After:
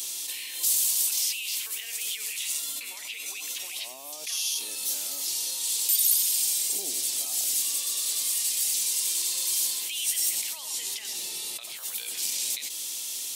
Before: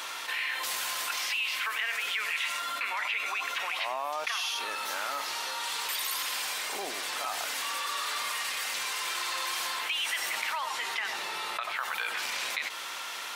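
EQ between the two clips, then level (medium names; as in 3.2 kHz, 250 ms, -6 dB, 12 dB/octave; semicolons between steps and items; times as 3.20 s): FFT filter 310 Hz 0 dB, 1.4 kHz -24 dB, 3.1 kHz -2 dB, 8.1 kHz +14 dB; 0.0 dB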